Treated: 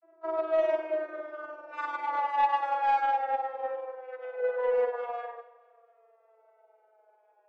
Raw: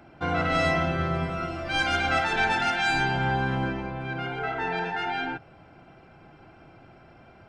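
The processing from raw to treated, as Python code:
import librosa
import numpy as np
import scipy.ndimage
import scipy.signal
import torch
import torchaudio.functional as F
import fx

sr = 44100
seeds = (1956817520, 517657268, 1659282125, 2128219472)

p1 = fx.vocoder_glide(x, sr, note=64, semitones=-8)
p2 = scipy.signal.sosfilt(scipy.signal.butter(12, 400.0, 'highpass', fs=sr, output='sos'), p1)
p3 = fx.tilt_eq(p2, sr, slope=-3.5)
p4 = p3 + 0.98 * np.pad(p3, (int(6.0 * sr / 1000.0), 0))[:len(p3)]
p5 = fx.granulator(p4, sr, seeds[0], grain_ms=93.0, per_s=20.0, spray_ms=28.0, spread_st=0)
p6 = fx.peak_eq(p5, sr, hz=3700.0, db=-8.5, octaves=1.8)
p7 = p6 + fx.echo_feedback(p6, sr, ms=224, feedback_pct=41, wet_db=-15, dry=0)
p8 = fx.rev_schroeder(p7, sr, rt60_s=0.31, comb_ms=28, drr_db=7.5)
p9 = 10.0 ** (-16.5 / 20.0) * np.tanh(p8 / 10.0 ** (-16.5 / 20.0))
y = fx.upward_expand(p9, sr, threshold_db=-41.0, expansion=1.5)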